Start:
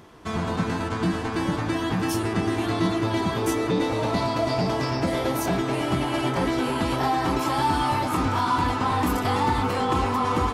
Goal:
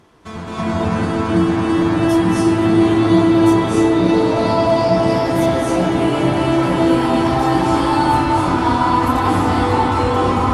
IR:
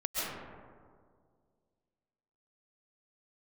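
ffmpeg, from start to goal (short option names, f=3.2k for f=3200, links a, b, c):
-filter_complex "[1:a]atrim=start_sample=2205,afade=t=out:st=0.34:d=0.01,atrim=end_sample=15435,asetrate=22491,aresample=44100[a];[0:a][a]afir=irnorm=-1:irlink=0,volume=-4dB"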